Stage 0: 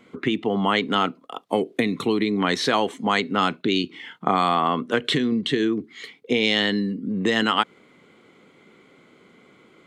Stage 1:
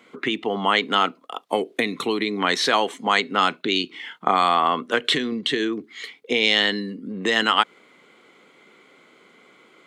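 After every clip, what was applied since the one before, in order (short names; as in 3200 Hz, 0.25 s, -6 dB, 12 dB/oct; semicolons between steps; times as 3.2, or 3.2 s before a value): HPF 580 Hz 6 dB/oct; gain +3.5 dB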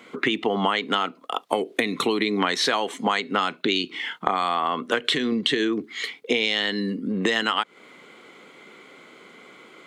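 compressor 10:1, threshold -24 dBFS, peak gain reduction 13 dB; gain +5.5 dB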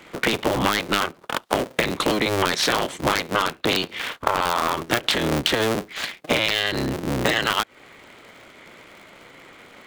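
cycle switcher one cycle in 3, inverted; gain +1.5 dB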